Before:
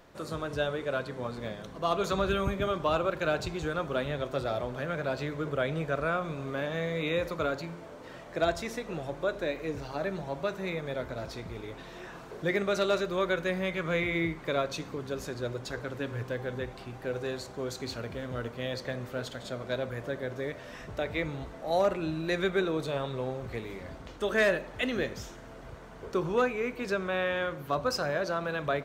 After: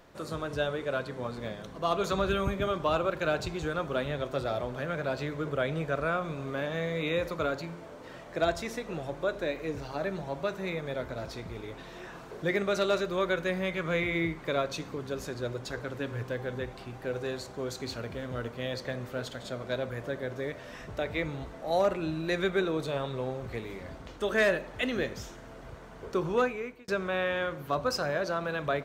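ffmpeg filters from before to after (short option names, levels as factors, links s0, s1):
-filter_complex "[0:a]asplit=2[s0][s1];[s0]atrim=end=26.88,asetpts=PTS-STARTPTS,afade=t=out:st=26.42:d=0.46[s2];[s1]atrim=start=26.88,asetpts=PTS-STARTPTS,afade=t=in:d=0.004:c=hsin[s3];[s2][s3]concat=n=2:v=0:a=1"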